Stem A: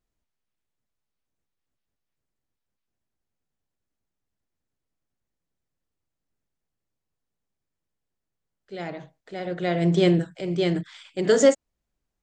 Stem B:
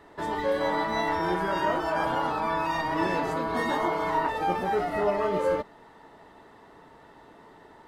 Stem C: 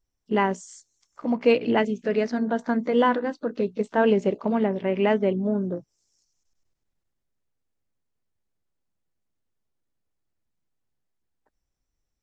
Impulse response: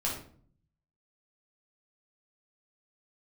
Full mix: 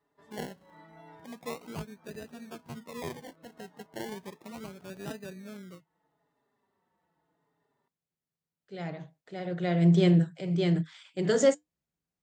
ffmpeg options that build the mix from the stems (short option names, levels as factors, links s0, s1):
-filter_complex "[0:a]volume=0.841[s0];[1:a]asplit=2[s1][s2];[s2]adelay=4.4,afreqshift=-0.79[s3];[s1][s3]amix=inputs=2:normalize=1,volume=0.119[s4];[2:a]agate=range=0.0224:threshold=0.00891:ratio=3:detection=peak,equalizer=f=1900:t=o:w=1.2:g=13,acrusher=samples=29:mix=1:aa=0.000001:lfo=1:lforange=17.4:lforate=0.34,volume=0.133,asplit=2[s5][s6];[s6]apad=whole_len=347515[s7];[s4][s7]sidechaincompress=threshold=0.002:ratio=10:attack=9.9:release=196[s8];[s0][s8][s5]amix=inputs=3:normalize=0,highpass=80,equalizer=f=160:w=4.4:g=10,flanger=delay=3.9:depth=2:regen=-81:speed=0.58:shape=triangular"